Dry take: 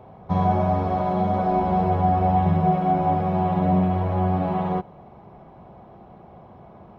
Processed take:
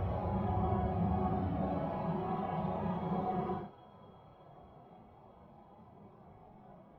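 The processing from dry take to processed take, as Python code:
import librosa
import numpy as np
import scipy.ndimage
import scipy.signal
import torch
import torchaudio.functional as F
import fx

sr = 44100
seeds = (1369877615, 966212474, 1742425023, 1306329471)

y = fx.comb_fb(x, sr, f0_hz=100.0, decay_s=1.9, harmonics='all', damping=0.0, mix_pct=60)
y = fx.paulstretch(y, sr, seeds[0], factor=5.1, window_s=0.05, from_s=4.1)
y = y * 10.0 ** (-4.0 / 20.0)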